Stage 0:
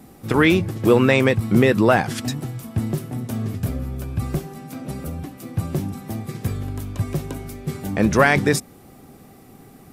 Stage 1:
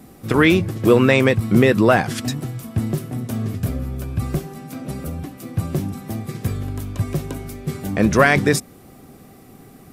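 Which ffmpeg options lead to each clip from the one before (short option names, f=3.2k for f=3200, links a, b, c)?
-af "bandreject=f=850:w=12,volume=1.5dB"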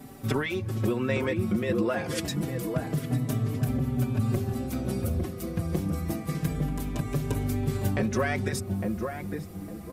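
-filter_complex "[0:a]acompressor=threshold=-23dB:ratio=16,asplit=2[a][b];[b]adelay=856,lowpass=f=890:p=1,volume=-3dB,asplit=2[c][d];[d]adelay=856,lowpass=f=890:p=1,volume=0.36,asplit=2[e][f];[f]adelay=856,lowpass=f=890:p=1,volume=0.36,asplit=2[g][h];[h]adelay=856,lowpass=f=890:p=1,volume=0.36,asplit=2[i][j];[j]adelay=856,lowpass=f=890:p=1,volume=0.36[k];[a][c][e][g][i][k]amix=inputs=6:normalize=0,asplit=2[l][m];[m]adelay=4.7,afreqshift=-0.27[n];[l][n]amix=inputs=2:normalize=1,volume=2dB"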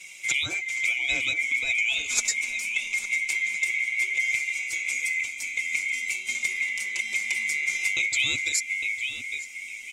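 -af "afftfilt=real='real(if(lt(b,920),b+92*(1-2*mod(floor(b/92),2)),b),0)':imag='imag(if(lt(b,920),b+92*(1-2*mod(floor(b/92),2)),b),0)':win_size=2048:overlap=0.75,lowpass=f=7k:t=q:w=3.4,highshelf=f=3.6k:g=12,volume=-4dB"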